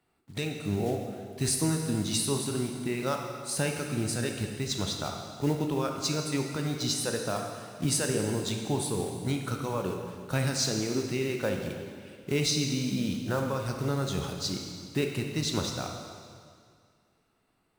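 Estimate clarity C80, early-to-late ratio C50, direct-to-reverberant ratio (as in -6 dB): 5.0 dB, 4.0 dB, 2.5 dB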